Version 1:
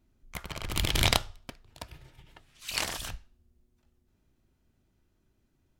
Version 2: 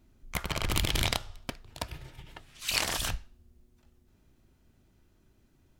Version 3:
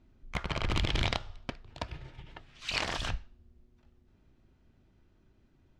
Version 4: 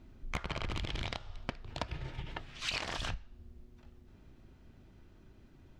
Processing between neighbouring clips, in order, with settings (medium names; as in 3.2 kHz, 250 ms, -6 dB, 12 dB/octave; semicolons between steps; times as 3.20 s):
compression 12:1, threshold -30 dBFS, peak gain reduction 13.5 dB; trim +6.5 dB
distance through air 140 m
compression 12:1, threshold -40 dBFS, peak gain reduction 16 dB; trim +7 dB